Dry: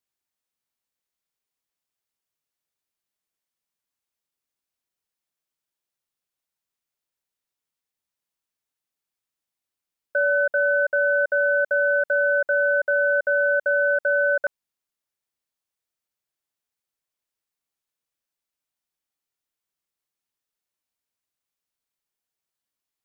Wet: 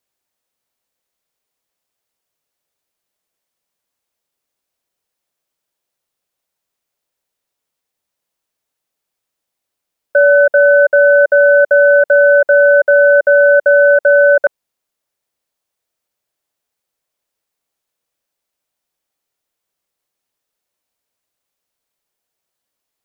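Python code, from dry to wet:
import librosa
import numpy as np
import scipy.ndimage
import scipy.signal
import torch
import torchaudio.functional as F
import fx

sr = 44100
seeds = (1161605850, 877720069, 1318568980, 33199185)

y = fx.peak_eq(x, sr, hz=570.0, db=6.0, octaves=1.1)
y = F.gain(torch.from_numpy(y), 8.0).numpy()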